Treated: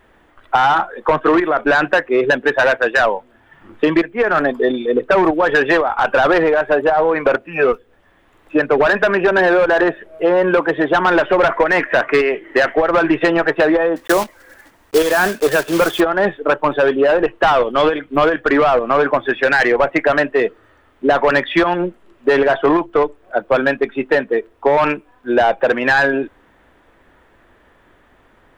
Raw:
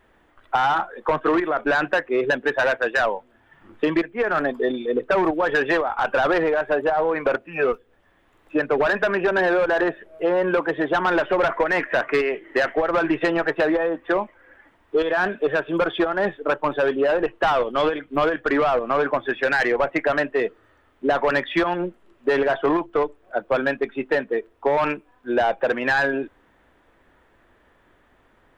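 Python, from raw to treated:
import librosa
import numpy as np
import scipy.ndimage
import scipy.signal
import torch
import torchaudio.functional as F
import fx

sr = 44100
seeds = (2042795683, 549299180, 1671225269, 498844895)

y = fx.block_float(x, sr, bits=3, at=(13.96, 16.02))
y = y * librosa.db_to_amplitude(6.5)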